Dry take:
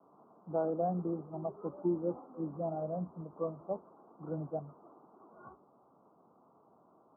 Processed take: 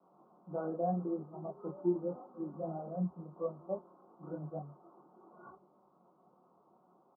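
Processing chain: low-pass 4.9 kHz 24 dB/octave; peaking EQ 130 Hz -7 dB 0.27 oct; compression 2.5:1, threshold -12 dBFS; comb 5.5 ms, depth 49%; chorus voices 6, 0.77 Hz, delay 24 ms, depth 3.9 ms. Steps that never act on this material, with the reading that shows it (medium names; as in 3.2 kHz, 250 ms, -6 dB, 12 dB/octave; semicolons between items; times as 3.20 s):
low-pass 4.9 kHz: input has nothing above 1.2 kHz; compression, threshold -12 dBFS: peak at its input -21.5 dBFS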